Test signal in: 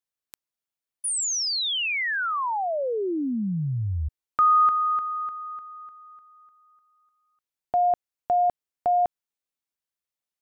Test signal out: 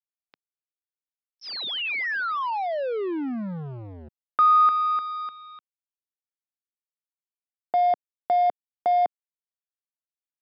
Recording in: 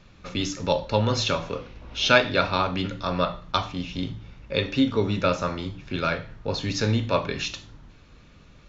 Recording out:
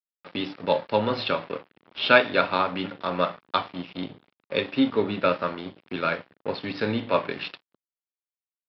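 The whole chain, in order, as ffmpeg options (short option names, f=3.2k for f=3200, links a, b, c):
-af "aresample=11025,aeval=exprs='sgn(val(0))*max(abs(val(0))-0.0141,0)':c=same,aresample=44100,highpass=210,lowpass=3.3k,volume=2dB"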